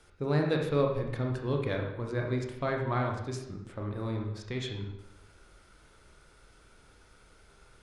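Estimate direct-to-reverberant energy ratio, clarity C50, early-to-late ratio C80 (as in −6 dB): 1.0 dB, 4.5 dB, 8.0 dB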